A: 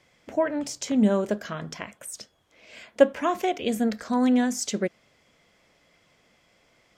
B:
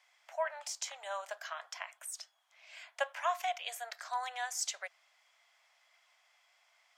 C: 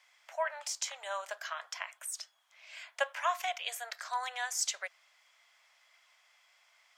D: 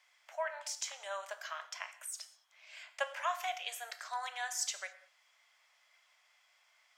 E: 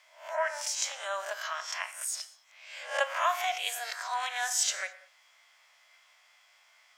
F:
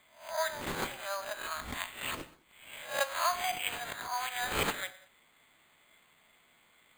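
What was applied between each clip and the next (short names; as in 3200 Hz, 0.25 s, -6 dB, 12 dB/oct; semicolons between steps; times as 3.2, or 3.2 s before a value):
steep high-pass 690 Hz 48 dB/oct; gain -5 dB
bell 730 Hz -5 dB 0.54 oct; gain +3.5 dB
non-linear reverb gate 0.24 s falling, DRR 9.5 dB; gain -3.5 dB
spectral swells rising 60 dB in 0.46 s; gain +5.5 dB
careless resampling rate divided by 8×, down none, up hold; gain -2.5 dB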